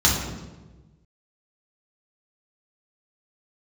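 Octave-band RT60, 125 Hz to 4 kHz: 1.8, 1.4, 1.4, 1.0, 0.90, 0.85 s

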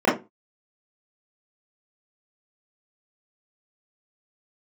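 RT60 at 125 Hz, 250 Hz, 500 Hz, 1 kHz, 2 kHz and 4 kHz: 0.30, 0.30, 0.25, 0.25, 0.20, 0.15 s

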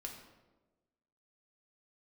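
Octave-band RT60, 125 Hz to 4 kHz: 1.3, 1.4, 1.3, 1.0, 0.85, 0.70 s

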